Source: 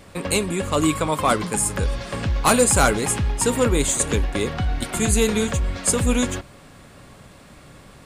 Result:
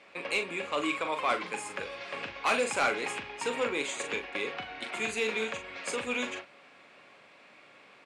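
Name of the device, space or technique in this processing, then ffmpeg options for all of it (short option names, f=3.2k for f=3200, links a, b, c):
intercom: -filter_complex "[0:a]highpass=420,lowpass=4.3k,equalizer=f=2.4k:t=o:w=0.5:g=9.5,asoftclip=type=tanh:threshold=-9.5dB,asplit=2[a][b];[b]adelay=41,volume=-8dB[c];[a][c]amix=inputs=2:normalize=0,volume=-8.5dB"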